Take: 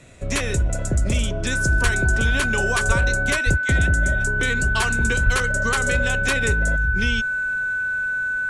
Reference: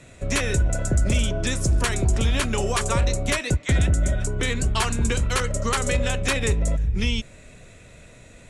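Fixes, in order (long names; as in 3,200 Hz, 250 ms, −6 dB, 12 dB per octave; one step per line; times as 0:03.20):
notch filter 1,500 Hz, Q 30
high-pass at the plosives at 0:01.83/0:02.87/0:03.45/0:05.25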